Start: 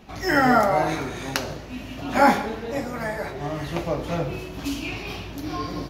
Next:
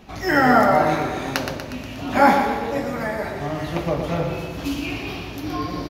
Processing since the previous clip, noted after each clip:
on a send: repeating echo 120 ms, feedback 58%, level −7.5 dB
on the sum: dynamic equaliser 7,600 Hz, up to −5 dB, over −46 dBFS, Q 0.86
level +2 dB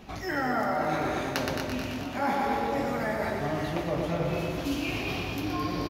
reversed playback
downward compressor 5 to 1, threshold −25 dBFS, peak gain reduction 14 dB
reversed playback
repeating echo 217 ms, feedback 55%, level −8 dB
level −1.5 dB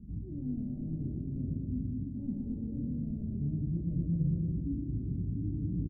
wavefolder on the positive side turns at −23 dBFS
inverse Chebyshev low-pass filter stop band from 1,000 Hz, stop band 70 dB
level +3.5 dB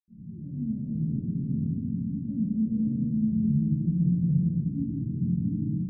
convolution reverb, pre-delay 76 ms
automatic gain control gain up to 8.5 dB
level −8 dB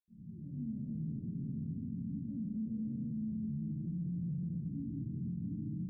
brickwall limiter −25 dBFS, peak gain reduction 10.5 dB
level −7.5 dB

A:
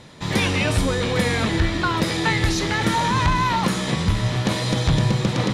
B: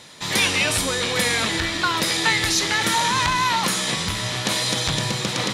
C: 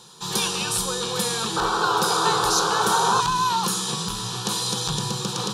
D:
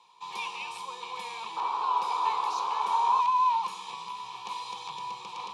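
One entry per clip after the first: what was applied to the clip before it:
spectral tilt +3 dB per octave
sound drawn into the spectrogram noise, 0:01.56–0:03.21, 380–1,600 Hz −21 dBFS; phaser with its sweep stopped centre 410 Hz, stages 8
pair of resonant band-passes 1,500 Hz, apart 1.2 octaves

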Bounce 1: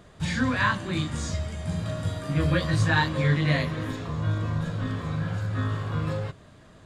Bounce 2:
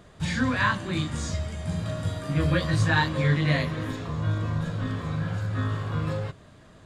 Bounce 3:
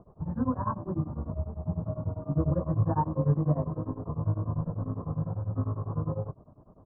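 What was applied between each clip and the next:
no processing that can be heard
Butterworth low-pass 1,100 Hz 48 dB per octave; tremolo along a rectified sine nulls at 10 Hz

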